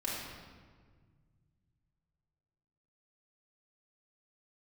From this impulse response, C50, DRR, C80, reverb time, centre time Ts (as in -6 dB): -1.0 dB, -7.0 dB, 1.5 dB, 1.6 s, 96 ms